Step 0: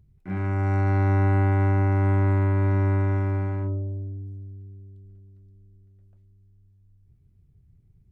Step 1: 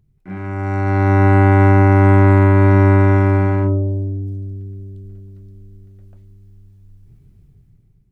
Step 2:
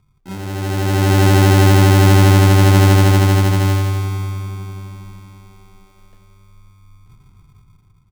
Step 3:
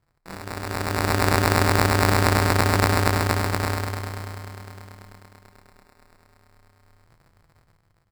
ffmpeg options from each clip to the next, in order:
-af "equalizer=f=75:t=o:w=0.45:g=-14.5,dynaudnorm=f=410:g=5:m=5.31,volume=1.19"
-filter_complex "[0:a]acrusher=samples=38:mix=1:aa=0.000001,asplit=2[s0][s1];[s1]adelay=541,lowpass=f=1300:p=1,volume=0.188,asplit=2[s2][s3];[s3]adelay=541,lowpass=f=1300:p=1,volume=0.52,asplit=2[s4][s5];[s5]adelay=541,lowpass=f=1300:p=1,volume=0.52,asplit=2[s6][s7];[s7]adelay=541,lowpass=f=1300:p=1,volume=0.52,asplit=2[s8][s9];[s9]adelay=541,lowpass=f=1300:p=1,volume=0.52[s10];[s0][s2][s4][s6][s8][s10]amix=inputs=6:normalize=0"
-af "crystalizer=i=5:c=0,acrusher=samples=14:mix=1:aa=0.000001,volume=0.211"

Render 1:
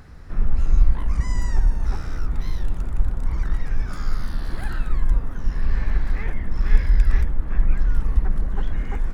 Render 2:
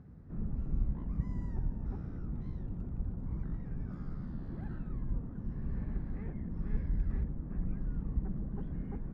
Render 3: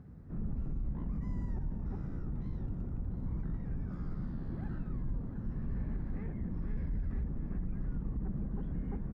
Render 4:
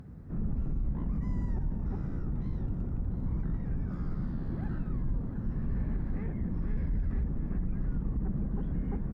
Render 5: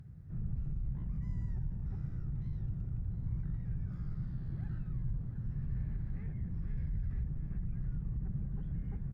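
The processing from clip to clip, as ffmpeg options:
-af "bandpass=f=180:t=q:w=1.2:csg=0,volume=0.794"
-filter_complex "[0:a]asplit=2[s0][s1];[s1]aecho=0:1:699:0.266[s2];[s0][s2]amix=inputs=2:normalize=0,alimiter=level_in=2:limit=0.0631:level=0:latency=1:release=30,volume=0.501,volume=1.19"
-af "acompressor=mode=upward:threshold=0.00158:ratio=2.5,volume=1.68"
-af "equalizer=f=125:t=o:w=1:g=9,equalizer=f=250:t=o:w=1:g=-10,equalizer=f=500:t=o:w=1:g=-6,equalizer=f=1000:t=o:w=1:g=-7,volume=0.473"

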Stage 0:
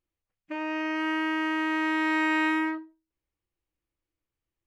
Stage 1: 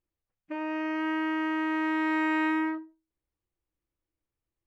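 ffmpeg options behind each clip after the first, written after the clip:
-af "highshelf=f=2300:g=-10"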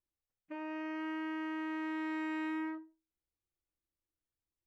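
-filter_complex "[0:a]acrossover=split=430|3000[s0][s1][s2];[s1]acompressor=threshold=0.0282:ratio=6[s3];[s0][s3][s2]amix=inputs=3:normalize=0,volume=0.376"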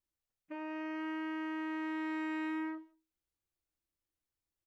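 -filter_complex "[0:a]asplit=2[s0][s1];[s1]adelay=160,highpass=300,lowpass=3400,asoftclip=type=hard:threshold=0.0106,volume=0.0447[s2];[s0][s2]amix=inputs=2:normalize=0"

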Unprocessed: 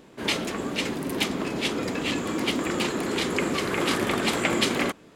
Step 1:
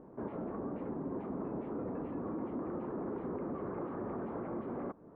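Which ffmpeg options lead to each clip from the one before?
-af "alimiter=limit=0.0944:level=0:latency=1:release=13,acompressor=threshold=0.0158:ratio=2.5,lowpass=f=1100:w=0.5412,lowpass=f=1100:w=1.3066,volume=0.794"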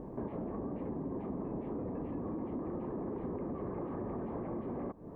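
-af "lowshelf=f=100:g=11.5,acompressor=threshold=0.00501:ratio=3,equalizer=f=1400:w=6.7:g=-11.5,volume=2.37"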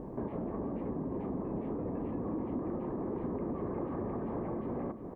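-filter_complex "[0:a]asplit=2[s0][s1];[s1]adelay=355.7,volume=0.355,highshelf=f=4000:g=-8[s2];[s0][s2]amix=inputs=2:normalize=0,volume=1.26"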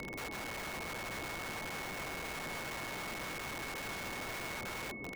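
-af "aeval=exprs='(mod(59.6*val(0)+1,2)-1)/59.6':c=same,aeval=exprs='val(0)+0.00708*sin(2*PI*2200*n/s)':c=same,volume=0.794"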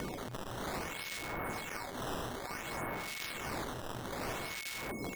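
-filter_complex "[0:a]acrossover=split=2000[s0][s1];[s0]aeval=exprs='val(0)*(1-1/2+1/2*cos(2*PI*1.4*n/s))':c=same[s2];[s1]aeval=exprs='val(0)*(1-1/2-1/2*cos(2*PI*1.4*n/s))':c=same[s3];[s2][s3]amix=inputs=2:normalize=0,acrusher=samples=11:mix=1:aa=0.000001:lfo=1:lforange=17.6:lforate=0.58,volume=2"

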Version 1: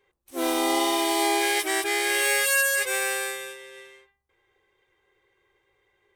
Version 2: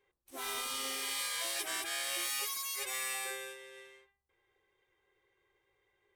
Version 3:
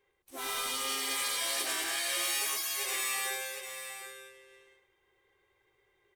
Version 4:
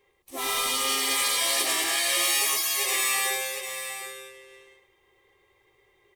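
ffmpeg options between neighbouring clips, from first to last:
-af "afftfilt=real='re*lt(hypot(re,im),0.141)':imag='im*lt(hypot(re,im),0.141)':win_size=1024:overlap=0.75,volume=0.422"
-af "aecho=1:1:108|757|863:0.708|0.398|0.112,volume=1.26"
-af "asuperstop=centerf=1500:order=4:qfactor=5.9,volume=2.51"

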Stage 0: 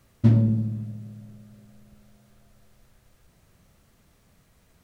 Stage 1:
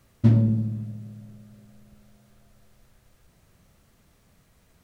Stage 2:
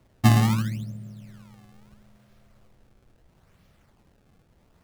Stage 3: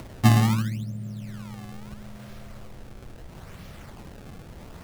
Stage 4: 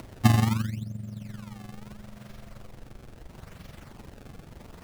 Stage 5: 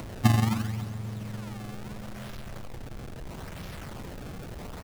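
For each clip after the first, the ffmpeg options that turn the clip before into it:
-af anull
-af "acrusher=samples=26:mix=1:aa=0.000001:lfo=1:lforange=41.6:lforate=0.75"
-af "acompressor=mode=upward:threshold=0.0501:ratio=2.5"
-af "tremolo=f=23:d=0.667"
-af "aeval=exprs='val(0)+0.5*0.0178*sgn(val(0))':c=same,aecho=1:1:272|544|816|1088:0.2|0.0838|0.0352|0.0148,volume=0.794"

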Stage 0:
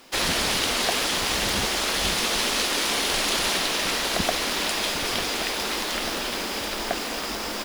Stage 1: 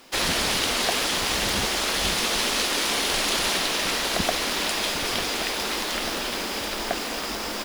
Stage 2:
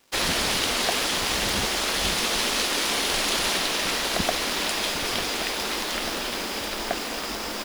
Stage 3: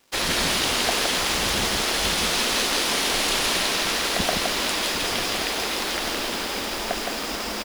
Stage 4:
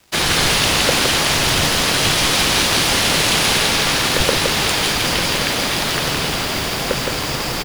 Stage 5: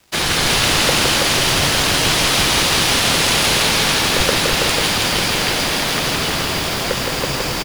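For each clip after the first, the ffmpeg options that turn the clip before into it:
-af anull
-af "aeval=exprs='sgn(val(0))*max(abs(val(0))-0.00376,0)':c=same"
-af "aecho=1:1:166:0.708"
-af "afreqshift=-180,volume=2.24"
-af "aecho=1:1:327:0.668,volume=0.891"

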